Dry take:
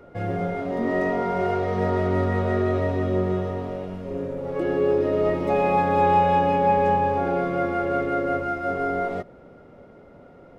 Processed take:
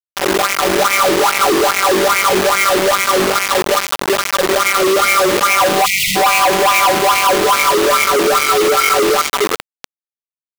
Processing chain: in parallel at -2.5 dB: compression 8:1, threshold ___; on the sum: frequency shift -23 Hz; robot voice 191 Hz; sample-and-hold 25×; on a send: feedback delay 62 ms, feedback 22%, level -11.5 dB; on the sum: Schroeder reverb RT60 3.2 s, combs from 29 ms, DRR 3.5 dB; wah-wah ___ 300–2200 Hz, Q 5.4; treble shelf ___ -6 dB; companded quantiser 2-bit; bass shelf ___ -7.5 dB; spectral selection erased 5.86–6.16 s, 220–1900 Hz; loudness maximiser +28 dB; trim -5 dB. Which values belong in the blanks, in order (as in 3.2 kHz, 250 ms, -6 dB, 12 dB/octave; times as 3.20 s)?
-28 dBFS, 2.4 Hz, 4.5 kHz, 330 Hz